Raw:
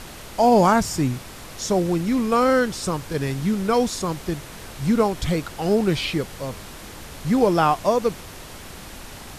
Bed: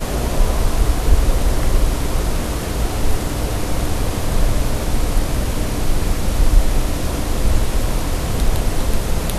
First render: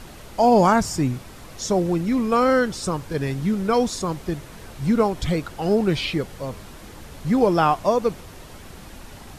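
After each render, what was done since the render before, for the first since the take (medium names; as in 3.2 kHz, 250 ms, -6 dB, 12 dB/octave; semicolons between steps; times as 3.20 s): noise reduction 6 dB, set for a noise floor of -39 dBFS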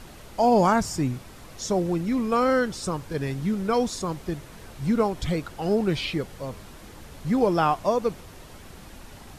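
trim -3.5 dB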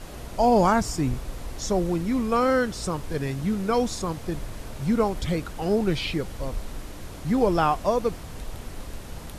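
add bed -19.5 dB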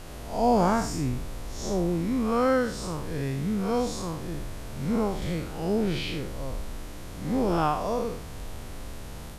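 spectral blur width 142 ms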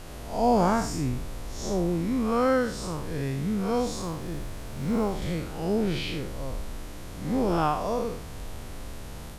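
3.85–5.13 s: companded quantiser 8-bit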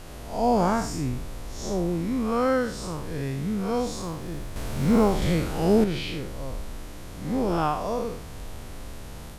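4.56–5.84 s: gain +6.5 dB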